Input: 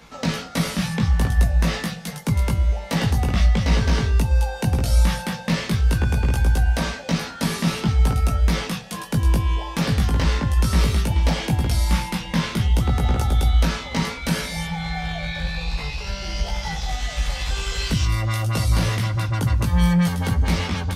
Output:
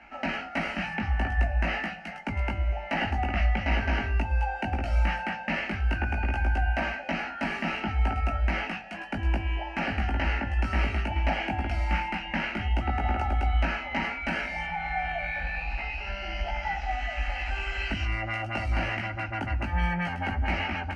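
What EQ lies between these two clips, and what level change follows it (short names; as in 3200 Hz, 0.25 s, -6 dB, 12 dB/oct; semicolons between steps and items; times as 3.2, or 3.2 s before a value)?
synth low-pass 2900 Hz, resonance Q 4.4; bell 870 Hz +9 dB 1.4 oct; fixed phaser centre 710 Hz, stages 8; -6.0 dB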